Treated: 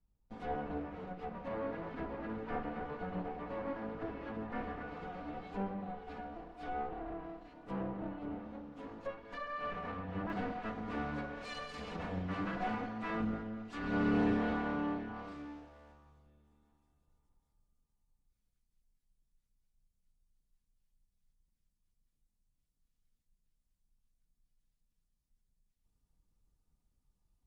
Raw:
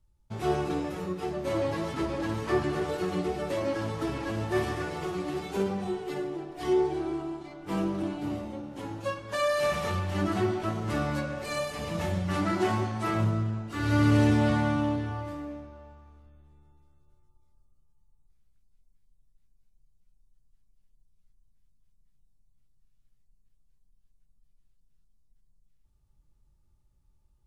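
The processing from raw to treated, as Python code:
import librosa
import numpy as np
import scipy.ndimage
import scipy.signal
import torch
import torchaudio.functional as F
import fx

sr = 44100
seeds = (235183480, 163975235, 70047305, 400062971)

y = fx.lower_of_two(x, sr, delay_ms=4.1)
y = fx.env_lowpass_down(y, sr, base_hz=2400.0, full_db=-30.5)
y = fx.peak_eq(y, sr, hz=8600.0, db=fx.steps((0.0, -11.0), (10.3, 3.0)), octaves=2.5)
y = y * 10.0 ** (-7.5 / 20.0)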